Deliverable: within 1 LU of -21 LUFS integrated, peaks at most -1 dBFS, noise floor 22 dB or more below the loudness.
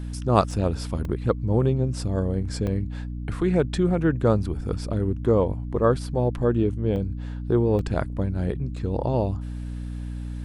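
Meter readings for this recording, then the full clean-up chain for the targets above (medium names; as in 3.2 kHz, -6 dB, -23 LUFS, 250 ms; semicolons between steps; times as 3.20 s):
dropouts 5; longest dropout 1.9 ms; hum 60 Hz; highest harmonic 300 Hz; hum level -29 dBFS; loudness -25.0 LUFS; peak level -4.0 dBFS; loudness target -21.0 LUFS
-> interpolate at 0.51/1.05/2.67/6.96/7.79 s, 1.9 ms; de-hum 60 Hz, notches 5; trim +4 dB; peak limiter -1 dBFS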